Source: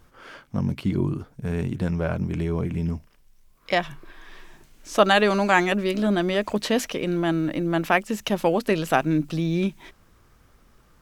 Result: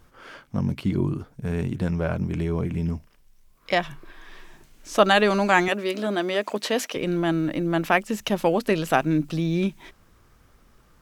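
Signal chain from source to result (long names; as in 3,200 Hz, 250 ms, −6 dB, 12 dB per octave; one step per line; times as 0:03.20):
0:05.68–0:06.96: high-pass filter 300 Hz 12 dB per octave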